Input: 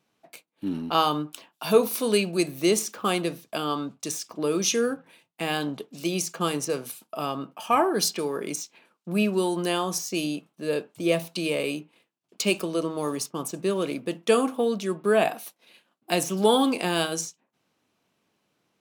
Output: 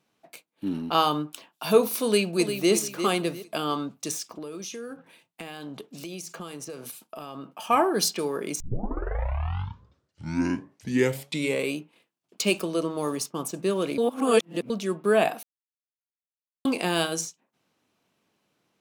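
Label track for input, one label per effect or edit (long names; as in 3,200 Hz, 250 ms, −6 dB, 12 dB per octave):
2.040000	2.720000	delay throw 350 ms, feedback 30%, level −8.5 dB
4.300000	7.520000	downward compressor 8 to 1, threshold −34 dBFS
8.600000	8.600000	tape start 3.18 s
13.980000	14.700000	reverse
15.430000	16.650000	silence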